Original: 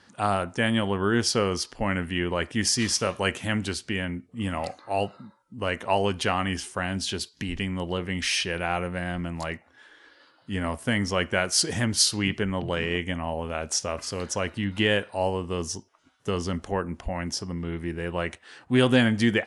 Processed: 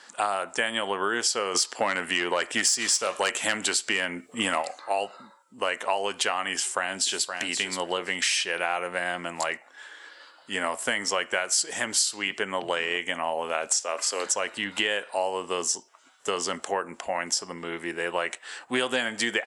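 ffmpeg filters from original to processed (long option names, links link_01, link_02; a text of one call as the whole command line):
ffmpeg -i in.wav -filter_complex "[0:a]asplit=3[link_01][link_02][link_03];[link_01]afade=type=out:start_time=1.54:duration=0.02[link_04];[link_02]aeval=exprs='0.335*sin(PI/2*1.78*val(0)/0.335)':channel_layout=same,afade=type=in:start_time=1.54:duration=0.02,afade=type=out:start_time=4.61:duration=0.02[link_05];[link_03]afade=type=in:start_time=4.61:duration=0.02[link_06];[link_04][link_05][link_06]amix=inputs=3:normalize=0,asplit=2[link_07][link_08];[link_08]afade=type=in:start_time=6.54:duration=0.01,afade=type=out:start_time=7.35:duration=0.01,aecho=0:1:520|1040:0.316228|0.0316228[link_09];[link_07][link_09]amix=inputs=2:normalize=0,asettb=1/sr,asplit=3[link_10][link_11][link_12];[link_10]atrim=end=13.674[link_13];[link_11]atrim=start=13.67:end=14.26,asetpts=PTS-STARTPTS,afade=type=in:duration=0.004:curve=qsin,afade=type=out:start_time=0.586:duration=0.004:curve=qsin,highpass=frequency=240:width=0.5412,highpass=frequency=240:width=1.3066[link_14];[link_12]atrim=start=14.256[link_15];[link_13][link_14]acrossfade=duration=0.004:curve1=hsin:curve2=qsin[link_16];[link_16][link_15]acrossfade=duration=0.004:curve1=qsin:curve2=hsin,highpass=550,equalizer=frequency=7600:width_type=o:width=0.22:gain=12,acompressor=threshold=-30dB:ratio=6,volume=7.5dB" out.wav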